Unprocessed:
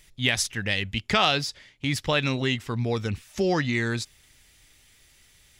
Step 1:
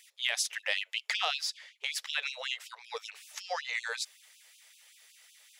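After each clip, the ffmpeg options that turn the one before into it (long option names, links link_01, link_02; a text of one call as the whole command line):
ffmpeg -i in.wav -af "acompressor=threshold=-25dB:ratio=6,afftfilt=real='re*gte(b*sr/1024,410*pow(2500/410,0.5+0.5*sin(2*PI*5.3*pts/sr)))':imag='im*gte(b*sr/1024,410*pow(2500/410,0.5+0.5*sin(2*PI*5.3*pts/sr)))':win_size=1024:overlap=0.75" out.wav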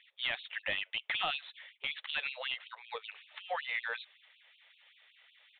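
ffmpeg -i in.wav -af "aresample=8000,asoftclip=type=tanh:threshold=-24dB,aresample=44100,bandreject=frequency=440:width=12" out.wav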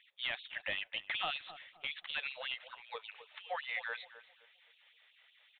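ffmpeg -i in.wav -filter_complex "[0:a]asplit=2[link_01][link_02];[link_02]adelay=260,lowpass=frequency=1000:poles=1,volume=-11dB,asplit=2[link_03][link_04];[link_04]adelay=260,lowpass=frequency=1000:poles=1,volume=0.35,asplit=2[link_05][link_06];[link_06]adelay=260,lowpass=frequency=1000:poles=1,volume=0.35,asplit=2[link_07][link_08];[link_08]adelay=260,lowpass=frequency=1000:poles=1,volume=0.35[link_09];[link_01][link_03][link_05][link_07][link_09]amix=inputs=5:normalize=0,volume=-3dB" out.wav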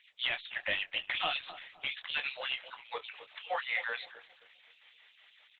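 ffmpeg -i in.wav -filter_complex "[0:a]asplit=2[link_01][link_02];[link_02]adelay=23,volume=-8dB[link_03];[link_01][link_03]amix=inputs=2:normalize=0,volume=4.5dB" -ar 48000 -c:a libopus -b:a 10k out.opus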